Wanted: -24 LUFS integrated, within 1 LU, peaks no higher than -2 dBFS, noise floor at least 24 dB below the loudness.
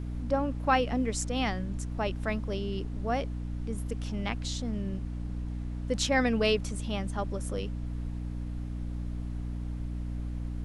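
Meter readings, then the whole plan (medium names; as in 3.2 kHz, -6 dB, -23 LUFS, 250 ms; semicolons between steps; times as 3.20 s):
hum 60 Hz; highest harmonic 300 Hz; hum level -33 dBFS; noise floor -36 dBFS; noise floor target -57 dBFS; loudness -32.5 LUFS; peak level -11.5 dBFS; loudness target -24.0 LUFS
-> de-hum 60 Hz, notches 5; noise print and reduce 21 dB; trim +8.5 dB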